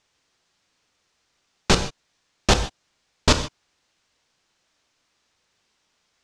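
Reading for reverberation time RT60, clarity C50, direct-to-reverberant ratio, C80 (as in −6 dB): non-exponential decay, 10.5 dB, 7.5 dB, 13.0 dB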